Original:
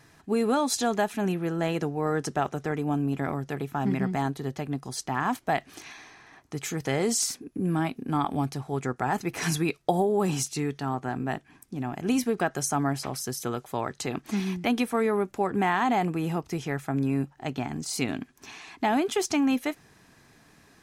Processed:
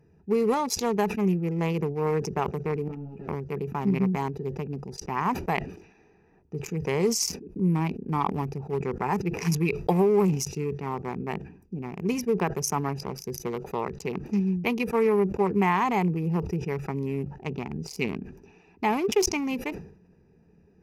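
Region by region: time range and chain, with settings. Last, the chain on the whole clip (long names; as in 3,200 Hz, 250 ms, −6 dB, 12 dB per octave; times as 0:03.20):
0:02.88–0:03.29: gain into a clipping stage and back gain 28 dB + string-ensemble chorus
whole clip: adaptive Wiener filter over 41 samples; EQ curve with evenly spaced ripples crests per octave 0.81, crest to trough 11 dB; level that may fall only so fast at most 95 dB per second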